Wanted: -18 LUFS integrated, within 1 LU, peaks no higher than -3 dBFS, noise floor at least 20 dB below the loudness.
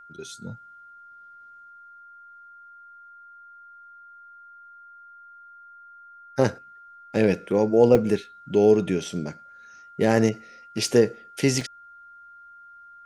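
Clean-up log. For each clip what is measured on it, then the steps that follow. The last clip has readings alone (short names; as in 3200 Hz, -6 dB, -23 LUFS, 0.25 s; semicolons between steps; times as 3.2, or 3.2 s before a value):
dropouts 3; longest dropout 1.6 ms; steady tone 1400 Hz; tone level -45 dBFS; loudness -22.5 LUFS; peak -5.0 dBFS; loudness target -18.0 LUFS
-> interpolate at 7.95/10.88/11.61, 1.6 ms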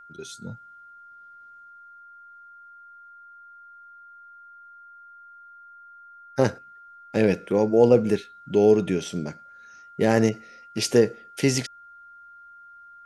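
dropouts 0; steady tone 1400 Hz; tone level -45 dBFS
-> notch 1400 Hz, Q 30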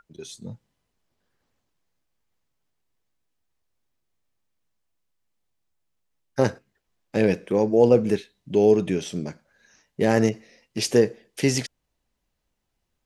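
steady tone none; loudness -22.5 LUFS; peak -5.5 dBFS; loudness target -18.0 LUFS
-> gain +4.5 dB; limiter -3 dBFS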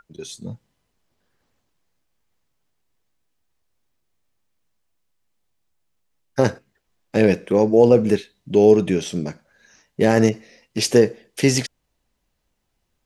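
loudness -18.5 LUFS; peak -3.0 dBFS; noise floor -73 dBFS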